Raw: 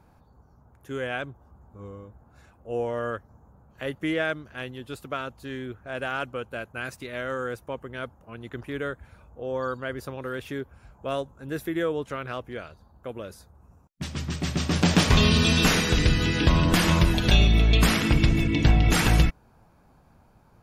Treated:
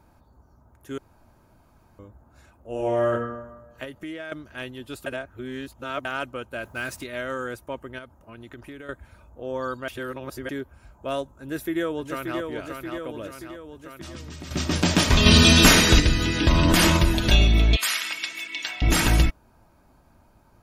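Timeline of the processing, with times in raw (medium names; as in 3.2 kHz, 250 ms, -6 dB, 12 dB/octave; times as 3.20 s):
0.98–1.99 s: room tone
2.70–3.12 s: reverb throw, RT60 1.1 s, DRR -1.5 dB
3.84–4.32 s: compression 4:1, threshold -35 dBFS
5.06–6.05 s: reverse
6.63–7.04 s: companding laws mixed up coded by mu
7.98–8.89 s: compression 5:1, threshold -38 dBFS
9.88–10.49 s: reverse
11.32–12.40 s: echo throw 580 ms, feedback 70%, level -5 dB
13.27–14.51 s: compression, threshold -35 dBFS
15.26–16.00 s: gain +6 dB
16.51–16.97 s: level flattener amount 100%
17.76–18.82 s: high-pass 1.5 kHz
whole clip: treble shelf 5.7 kHz +4.5 dB; comb 3.2 ms, depth 33%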